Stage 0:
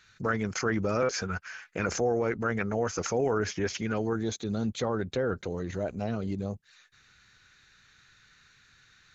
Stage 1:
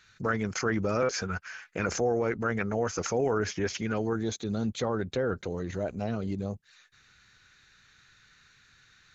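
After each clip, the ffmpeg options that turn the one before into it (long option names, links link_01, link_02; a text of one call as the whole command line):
ffmpeg -i in.wav -af anull out.wav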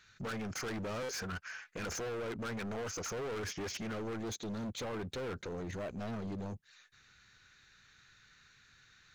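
ffmpeg -i in.wav -af "volume=34dB,asoftclip=hard,volume=-34dB,volume=-3dB" out.wav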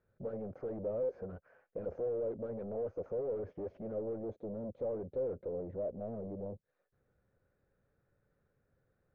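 ffmpeg -i in.wav -af "lowpass=frequency=550:width_type=q:width=4.9,volume=-5.5dB" out.wav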